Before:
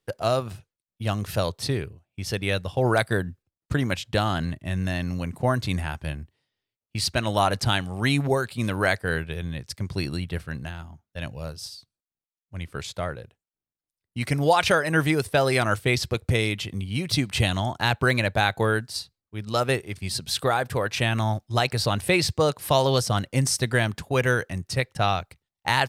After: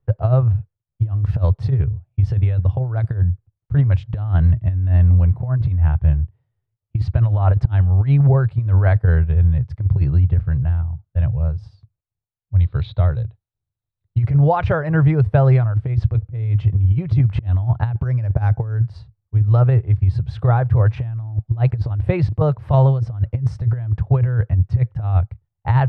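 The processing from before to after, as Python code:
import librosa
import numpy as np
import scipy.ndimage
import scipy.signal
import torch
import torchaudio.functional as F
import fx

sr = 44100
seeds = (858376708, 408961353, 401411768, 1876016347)

y = fx.high_shelf(x, sr, hz=3900.0, db=8.0, at=(1.1, 4.89))
y = fx.lowpass_res(y, sr, hz=3900.0, q=12.0, at=(12.6, 14.18))
y = fx.resample_bad(y, sr, factor=6, down='filtered', up='hold', at=(17.95, 18.76))
y = scipy.signal.sosfilt(scipy.signal.butter(2, 1100.0, 'lowpass', fs=sr, output='sos'), y)
y = fx.low_shelf_res(y, sr, hz=160.0, db=12.0, q=3.0)
y = fx.over_compress(y, sr, threshold_db=-14.0, ratio=-0.5)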